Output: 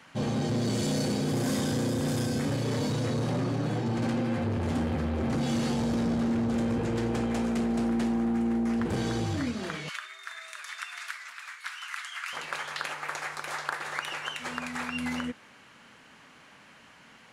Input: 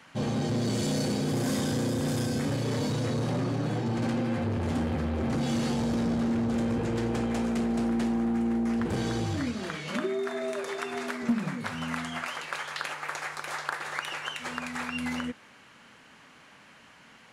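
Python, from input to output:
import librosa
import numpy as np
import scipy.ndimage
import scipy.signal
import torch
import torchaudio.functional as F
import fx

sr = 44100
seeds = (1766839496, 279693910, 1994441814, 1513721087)

y = fx.highpass(x, sr, hz=1300.0, slope=24, at=(9.89, 12.33))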